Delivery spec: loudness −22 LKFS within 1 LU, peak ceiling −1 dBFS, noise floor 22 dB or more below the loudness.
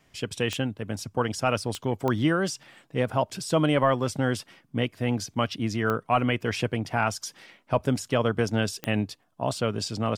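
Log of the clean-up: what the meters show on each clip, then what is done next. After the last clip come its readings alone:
number of clicks 5; integrated loudness −27.5 LKFS; sample peak −10.5 dBFS; target loudness −22.0 LKFS
→ click removal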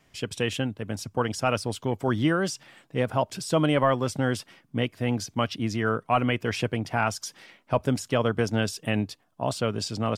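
number of clicks 0; integrated loudness −27.5 LKFS; sample peak −10.5 dBFS; target loudness −22.0 LKFS
→ level +5.5 dB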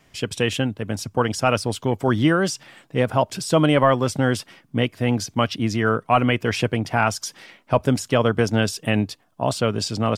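integrated loudness −22.0 LKFS; sample peak −5.0 dBFS; background noise floor −60 dBFS

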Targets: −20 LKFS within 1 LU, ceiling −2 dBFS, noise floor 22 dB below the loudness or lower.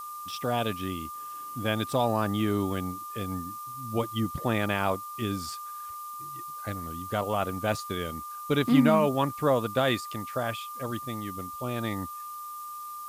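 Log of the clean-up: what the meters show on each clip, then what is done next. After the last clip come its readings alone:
interfering tone 1,200 Hz; level of the tone −37 dBFS; background noise floor −40 dBFS; target noise floor −52 dBFS; integrated loudness −30.0 LKFS; sample peak −9.5 dBFS; target loudness −20.0 LKFS
→ notch filter 1,200 Hz, Q 30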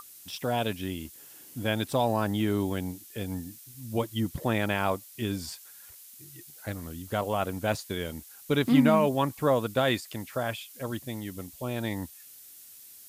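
interfering tone none found; background noise floor −50 dBFS; target noise floor −52 dBFS
→ noise reduction from a noise print 6 dB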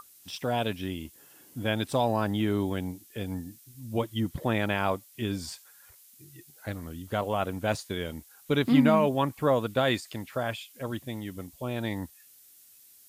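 background noise floor −56 dBFS; integrated loudness −29.5 LKFS; sample peak −10.0 dBFS; target loudness −20.0 LKFS
→ level +9.5 dB
brickwall limiter −2 dBFS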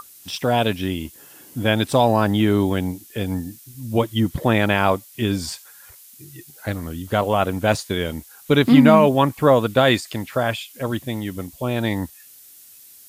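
integrated loudness −20.0 LKFS; sample peak −2.0 dBFS; background noise floor −46 dBFS

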